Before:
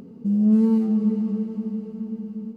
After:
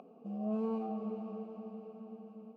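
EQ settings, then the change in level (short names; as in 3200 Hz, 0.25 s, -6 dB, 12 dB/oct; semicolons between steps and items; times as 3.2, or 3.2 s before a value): vowel filter a; HPF 150 Hz; bell 680 Hz +4 dB 0.74 oct; +6.5 dB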